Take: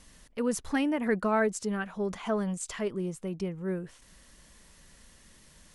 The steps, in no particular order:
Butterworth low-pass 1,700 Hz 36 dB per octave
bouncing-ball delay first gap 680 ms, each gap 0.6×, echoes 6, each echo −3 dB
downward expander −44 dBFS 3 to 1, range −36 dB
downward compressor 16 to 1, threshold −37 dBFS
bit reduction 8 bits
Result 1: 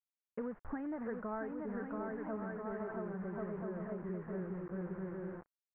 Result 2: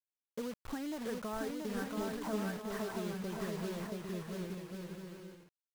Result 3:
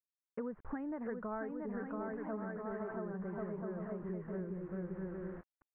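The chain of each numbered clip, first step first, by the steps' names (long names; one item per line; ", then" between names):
downward expander, then bouncing-ball delay, then downward compressor, then bit reduction, then Butterworth low-pass
Butterworth low-pass, then downward compressor, then downward expander, then bit reduction, then bouncing-ball delay
bouncing-ball delay, then downward expander, then bit reduction, then downward compressor, then Butterworth low-pass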